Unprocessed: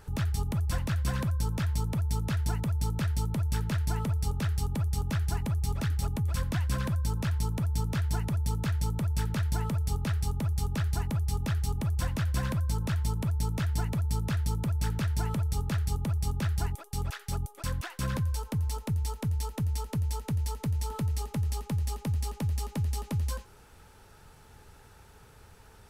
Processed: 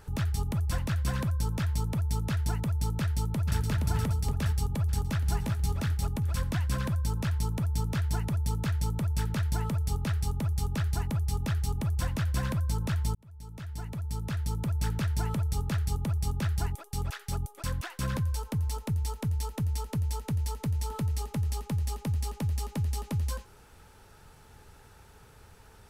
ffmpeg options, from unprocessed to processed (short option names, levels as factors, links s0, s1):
-filter_complex "[0:a]asplit=2[s0][s1];[s1]afade=t=in:st=3:d=0.01,afade=t=out:st=3.58:d=0.01,aecho=0:1:470|940|1410|1880|2350|2820|3290|3760|4230:0.630957|0.378574|0.227145|0.136287|0.0817721|0.0490632|0.0294379|0.0176628|0.0105977[s2];[s0][s2]amix=inputs=2:normalize=0,asplit=2[s3][s4];[s4]afade=t=in:st=4.87:d=0.01,afade=t=out:st=5.29:d=0.01,aecho=0:1:370|740|1110|1480|1850:0.501187|0.200475|0.08019|0.032076|0.0128304[s5];[s3][s5]amix=inputs=2:normalize=0,asplit=2[s6][s7];[s6]atrim=end=13.15,asetpts=PTS-STARTPTS,afade=t=out:st=13.146:d=0.004:c=hsin[s8];[s7]atrim=start=13.15,asetpts=PTS-STARTPTS,afade=t=in:d=1.66[s9];[s8][s9]concat=n=2:v=0:a=1"